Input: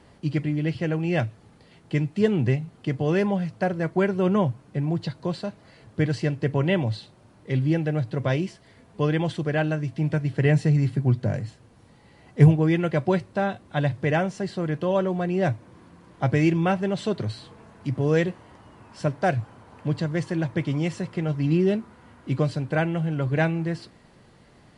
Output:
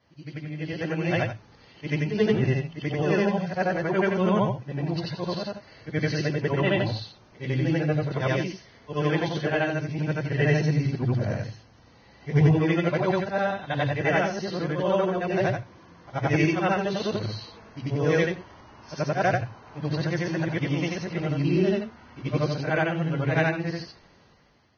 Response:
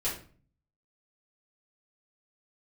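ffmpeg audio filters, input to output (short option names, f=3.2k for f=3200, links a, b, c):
-af "afftfilt=real='re':imag='-im':win_size=8192:overlap=0.75,lowshelf=f=330:g=-8,dynaudnorm=f=190:g=9:m=12dB,lowshelf=f=64:g=9.5,volume=-5dB" -ar 16000 -c:a libvorbis -b:a 16k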